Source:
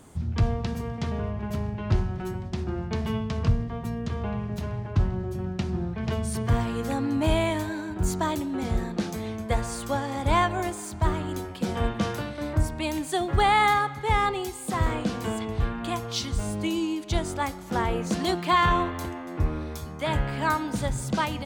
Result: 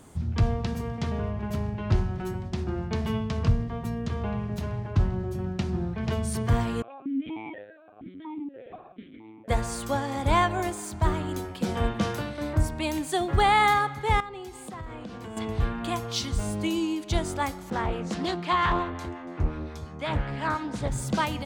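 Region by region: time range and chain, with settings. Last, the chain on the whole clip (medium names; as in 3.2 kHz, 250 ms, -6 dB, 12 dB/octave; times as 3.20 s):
6.82–9.48 s: LPC vocoder at 8 kHz pitch kept + stepped vowel filter 4.2 Hz
14.20–15.37 s: low-pass 3.8 kHz 6 dB/octave + compression 4:1, threshold -37 dBFS
17.70–20.92 s: distance through air 58 m + harmonic tremolo 5.7 Hz, depth 50%, crossover 870 Hz + loudspeaker Doppler distortion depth 0.45 ms
whole clip: none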